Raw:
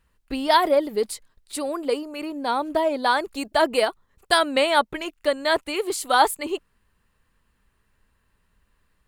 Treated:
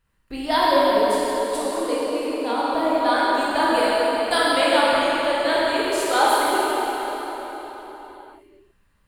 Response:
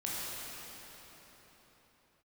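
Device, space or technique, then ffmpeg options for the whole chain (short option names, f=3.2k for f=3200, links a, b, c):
cathedral: -filter_complex "[1:a]atrim=start_sample=2205[a];[0:a][a]afir=irnorm=-1:irlink=0,volume=-2dB"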